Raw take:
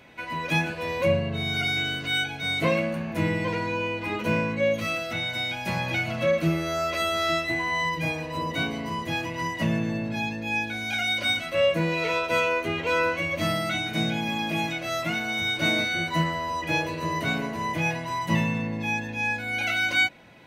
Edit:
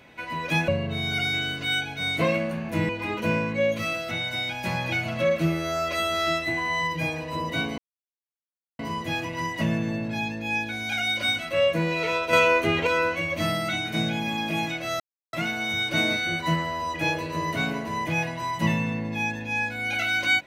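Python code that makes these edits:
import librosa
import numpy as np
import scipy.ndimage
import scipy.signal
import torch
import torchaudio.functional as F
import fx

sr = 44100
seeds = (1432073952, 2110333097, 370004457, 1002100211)

y = fx.edit(x, sr, fx.cut(start_s=0.68, length_s=0.43),
    fx.cut(start_s=3.32, length_s=0.59),
    fx.insert_silence(at_s=8.8, length_s=1.01),
    fx.clip_gain(start_s=12.34, length_s=0.54, db=5.0),
    fx.insert_silence(at_s=15.01, length_s=0.33), tone=tone)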